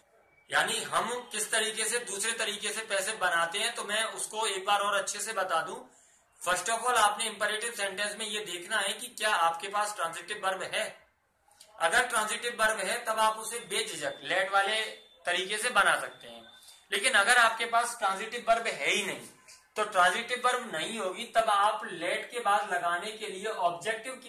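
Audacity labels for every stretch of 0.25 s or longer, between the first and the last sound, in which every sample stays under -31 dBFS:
5.740000	6.420000	silence
10.880000	11.810000	silence
14.880000	15.270000	silence
16.070000	16.920000	silence
19.150000	19.780000	silence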